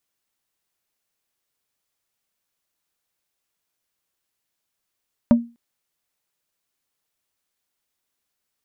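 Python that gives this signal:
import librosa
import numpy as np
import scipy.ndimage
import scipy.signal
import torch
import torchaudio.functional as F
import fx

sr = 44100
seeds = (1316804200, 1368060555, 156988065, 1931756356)

y = fx.strike_wood(sr, length_s=0.25, level_db=-6.5, body='plate', hz=235.0, decay_s=0.29, tilt_db=8, modes=5)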